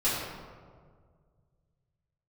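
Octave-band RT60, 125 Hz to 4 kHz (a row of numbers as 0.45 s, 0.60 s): 3.1 s, 2.1 s, 2.0 s, 1.6 s, 1.2 s, 0.85 s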